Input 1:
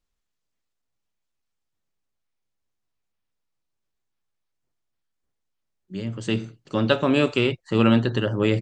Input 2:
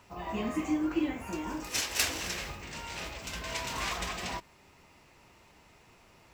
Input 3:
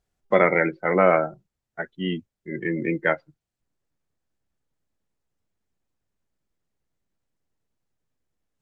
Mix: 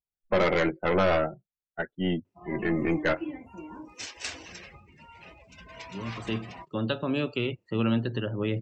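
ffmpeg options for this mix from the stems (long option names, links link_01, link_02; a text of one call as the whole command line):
ffmpeg -i stem1.wav -i stem2.wav -i stem3.wav -filter_complex "[0:a]acrossover=split=260|3000[link_01][link_02][link_03];[link_02]acompressor=threshold=-23dB:ratio=2.5[link_04];[link_01][link_04][link_03]amix=inputs=3:normalize=0,volume=-6.5dB[link_05];[1:a]acrossover=split=8900[link_06][link_07];[link_07]acompressor=threshold=-59dB:ratio=4:attack=1:release=60[link_08];[link_06][link_08]amix=inputs=2:normalize=0,highpass=68,adelay=2250,volume=-5.5dB[link_09];[2:a]highshelf=frequency=2900:gain=-6,aeval=exprs='(tanh(11.2*val(0)+0.35)-tanh(0.35))/11.2':channel_layout=same,volume=2dB[link_10];[link_05][link_09][link_10]amix=inputs=3:normalize=0,afftdn=noise_reduction=25:noise_floor=-44" out.wav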